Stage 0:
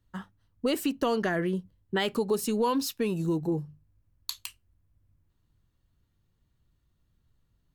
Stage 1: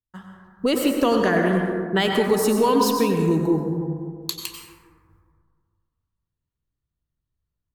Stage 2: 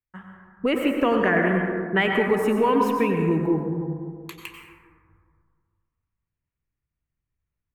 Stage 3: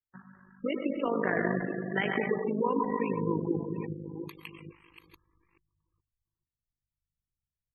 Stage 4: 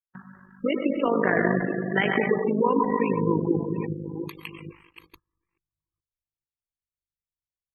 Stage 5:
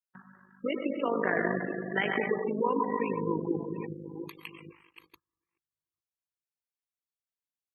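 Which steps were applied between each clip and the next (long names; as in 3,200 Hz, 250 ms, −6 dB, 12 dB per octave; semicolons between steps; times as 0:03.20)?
noise gate with hold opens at −58 dBFS; automatic gain control gain up to 9 dB; on a send at −1.5 dB: convolution reverb RT60 2.0 s, pre-delay 82 ms; on the sum: level −2.5 dB
high shelf with overshoot 3,200 Hz −11.5 dB, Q 3; level −2 dB
delay that plays each chunk backwards 429 ms, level −9 dB; amplitude modulation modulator 51 Hz, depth 60%; gate on every frequency bin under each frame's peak −20 dB strong; level −5.5 dB
noise gate −57 dBFS, range −19 dB; level +6.5 dB
high-pass filter 240 Hz 6 dB per octave; level −5 dB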